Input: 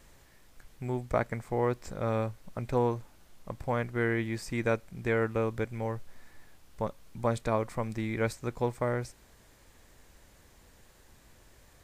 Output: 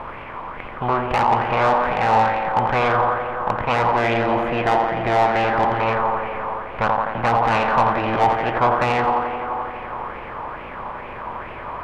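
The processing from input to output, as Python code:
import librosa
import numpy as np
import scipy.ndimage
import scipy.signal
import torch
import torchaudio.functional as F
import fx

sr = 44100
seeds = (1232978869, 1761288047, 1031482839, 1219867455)

y = fx.bin_compress(x, sr, power=0.6)
y = fx.peak_eq(y, sr, hz=780.0, db=8.5, octaves=1.1)
y = fx.leveller(y, sr, passes=1)
y = fx.formant_shift(y, sr, semitones=5)
y = fx.air_absorb(y, sr, metres=470.0)
y = fx.echo_tape(y, sr, ms=86, feedback_pct=87, wet_db=-6, lp_hz=4200.0, drive_db=8.0, wow_cents=10)
y = 10.0 ** (-19.5 / 20.0) * np.tanh(y / 10.0 ** (-19.5 / 20.0))
y = fx.bell_lfo(y, sr, hz=2.3, low_hz=900.0, high_hz=2600.0, db=9)
y = y * librosa.db_to_amplitude(4.5)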